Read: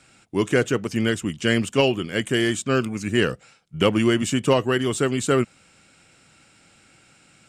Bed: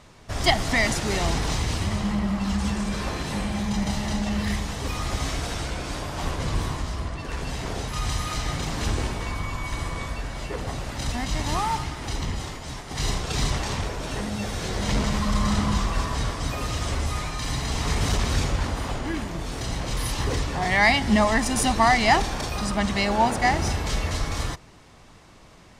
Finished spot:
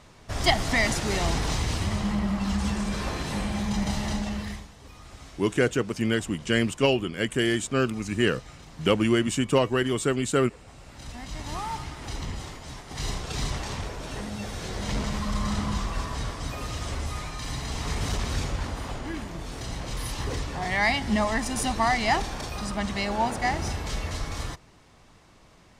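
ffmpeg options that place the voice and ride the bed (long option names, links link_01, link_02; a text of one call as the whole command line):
ffmpeg -i stem1.wav -i stem2.wav -filter_complex "[0:a]adelay=5050,volume=-3dB[link_01];[1:a]volume=12dB,afade=type=out:start_time=4.08:duration=0.62:silence=0.141254,afade=type=in:start_time=10.7:duration=1.37:silence=0.211349[link_02];[link_01][link_02]amix=inputs=2:normalize=0" out.wav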